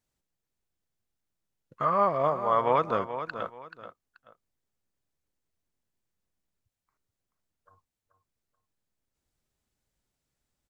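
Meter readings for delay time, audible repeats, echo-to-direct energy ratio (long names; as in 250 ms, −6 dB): 432 ms, 2, −10.0 dB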